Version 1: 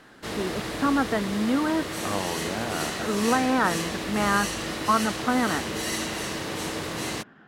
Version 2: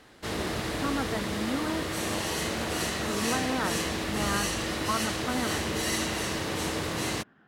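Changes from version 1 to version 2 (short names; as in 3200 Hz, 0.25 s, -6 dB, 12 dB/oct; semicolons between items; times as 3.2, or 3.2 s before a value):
speech -8.5 dB; master: add bell 76 Hz +6.5 dB 0.83 oct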